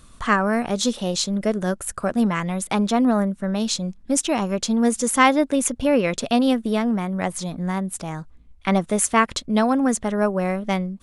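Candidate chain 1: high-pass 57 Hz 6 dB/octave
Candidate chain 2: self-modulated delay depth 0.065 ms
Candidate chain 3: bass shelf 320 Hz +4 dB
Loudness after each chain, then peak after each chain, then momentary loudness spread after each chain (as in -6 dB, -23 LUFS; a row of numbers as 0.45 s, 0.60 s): -22.0 LUFS, -22.0 LUFS, -20.0 LUFS; -3.0 dBFS, -3.0 dBFS, -1.5 dBFS; 7 LU, 7 LU, 8 LU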